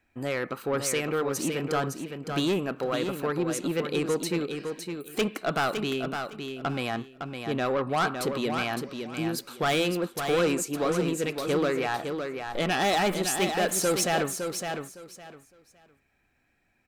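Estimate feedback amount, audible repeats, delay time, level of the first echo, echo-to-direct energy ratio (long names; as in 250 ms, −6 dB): 21%, 3, 560 ms, −6.5 dB, −6.5 dB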